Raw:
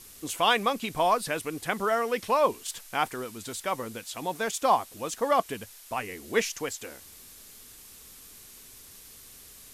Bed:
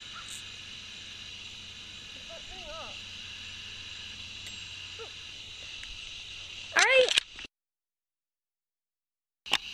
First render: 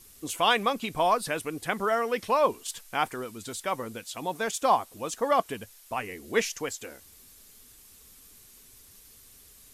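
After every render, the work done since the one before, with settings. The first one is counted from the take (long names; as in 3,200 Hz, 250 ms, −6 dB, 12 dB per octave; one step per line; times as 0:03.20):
broadband denoise 6 dB, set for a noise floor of −50 dBFS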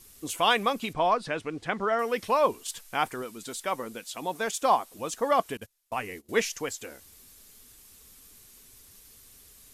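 0:00.93–0:01.99: high-frequency loss of the air 110 metres
0:03.22–0:04.99: parametric band 100 Hz −11.5 dB
0:05.57–0:06.29: noise gate −44 dBFS, range −23 dB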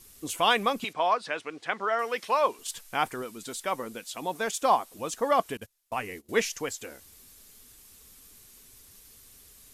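0:00.84–0:02.59: meter weighting curve A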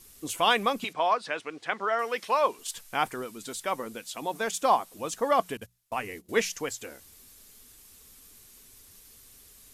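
mains-hum notches 60/120/180 Hz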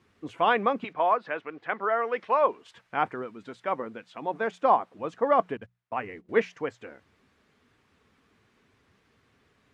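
Chebyshev band-pass filter 110–1,800 Hz, order 2
dynamic equaliser 430 Hz, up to +4 dB, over −35 dBFS, Q 0.71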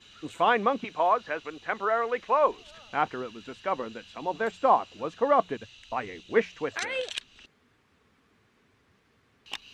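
mix in bed −10 dB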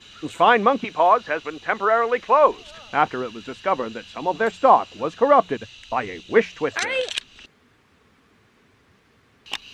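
level +7.5 dB
brickwall limiter −3 dBFS, peak gain reduction 2 dB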